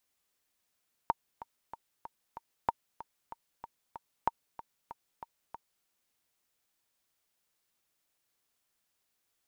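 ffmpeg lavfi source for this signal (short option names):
-f lavfi -i "aevalsrc='pow(10,(-13-16.5*gte(mod(t,5*60/189),60/189))/20)*sin(2*PI*923*mod(t,60/189))*exp(-6.91*mod(t,60/189)/0.03)':d=4.76:s=44100"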